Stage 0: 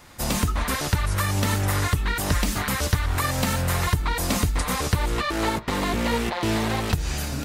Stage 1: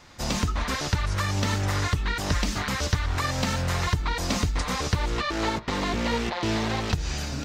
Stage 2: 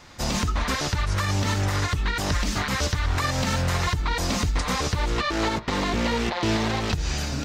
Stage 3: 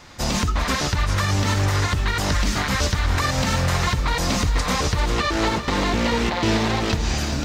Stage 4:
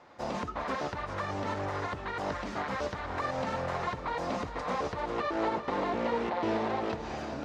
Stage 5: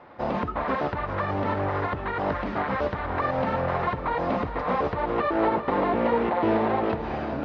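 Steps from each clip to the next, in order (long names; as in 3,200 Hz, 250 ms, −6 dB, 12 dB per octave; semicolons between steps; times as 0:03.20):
high shelf with overshoot 8,000 Hz −11 dB, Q 1.5; level −2.5 dB
brickwall limiter −17.5 dBFS, peak gain reduction 7 dB; level +3 dB
feedback echo at a low word length 396 ms, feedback 55%, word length 9 bits, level −11 dB; level +3 dB
resonant band-pass 630 Hz, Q 0.97; level −4.5 dB
high-frequency loss of the air 340 metres; level +8.5 dB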